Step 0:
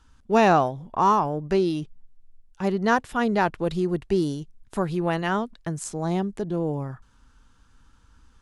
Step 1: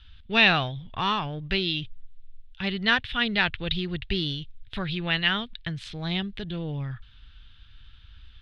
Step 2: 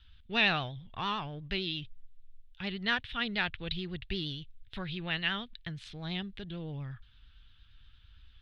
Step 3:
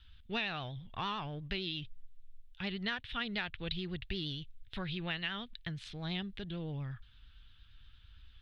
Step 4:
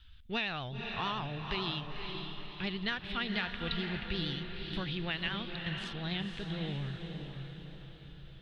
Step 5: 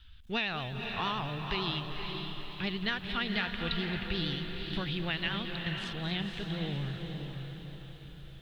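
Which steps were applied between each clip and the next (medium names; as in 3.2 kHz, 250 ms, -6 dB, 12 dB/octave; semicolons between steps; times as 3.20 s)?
FFT filter 110 Hz 0 dB, 150 Hz -9 dB, 350 Hz -18 dB, 1 kHz -17 dB, 1.8 kHz -1 dB, 3.6 kHz +10 dB, 7.1 kHz -29 dB; trim +7.5 dB
vibrato 8.7 Hz 53 cents; trim -8 dB
compression 6:1, threshold -33 dBFS, peak gain reduction 11.5 dB
echo that smears into a reverb 510 ms, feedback 49%, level -5 dB; trim +1.5 dB
bit-crushed delay 222 ms, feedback 55%, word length 10-bit, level -13 dB; trim +2 dB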